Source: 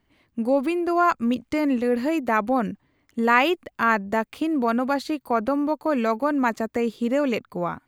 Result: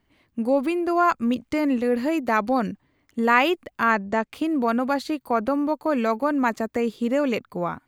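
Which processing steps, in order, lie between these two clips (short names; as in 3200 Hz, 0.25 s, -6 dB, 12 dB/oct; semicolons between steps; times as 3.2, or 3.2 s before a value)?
2.28–2.72 bell 4700 Hz +11 dB 0.51 oct; 3.91–4.33 LPF 7800 Hz 24 dB/oct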